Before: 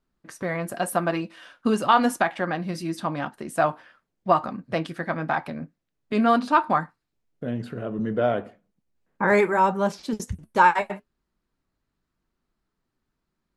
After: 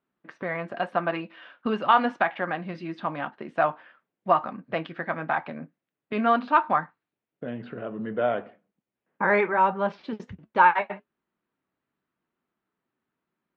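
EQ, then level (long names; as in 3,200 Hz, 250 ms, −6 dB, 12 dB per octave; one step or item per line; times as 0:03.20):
Bessel high-pass filter 220 Hz, order 2
low-pass filter 3,200 Hz 24 dB per octave
dynamic equaliser 320 Hz, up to −4 dB, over −35 dBFS, Q 0.88
0.0 dB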